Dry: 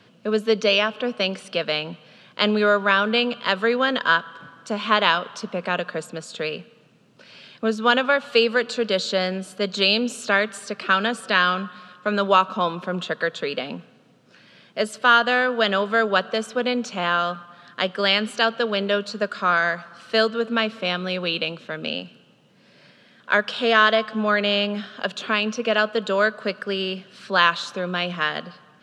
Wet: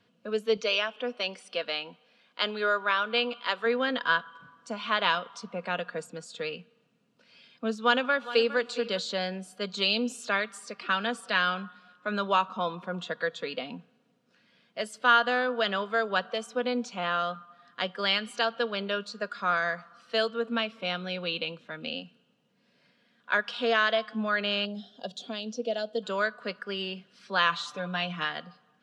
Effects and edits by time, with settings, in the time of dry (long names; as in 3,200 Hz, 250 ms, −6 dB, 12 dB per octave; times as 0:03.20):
0:00.57–0:03.66: parametric band 130 Hz −14.5 dB 1.1 octaves
0:07.79–0:08.57: delay throw 410 ms, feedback 10%, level −14.5 dB
0:24.65–0:26.03: flat-topped bell 1,600 Hz −14.5 dB
0:27.49–0:28.25: comb filter 6.8 ms
whole clip: noise reduction from a noise print of the clip's start 7 dB; comb filter 4.2 ms, depth 33%; level −7.5 dB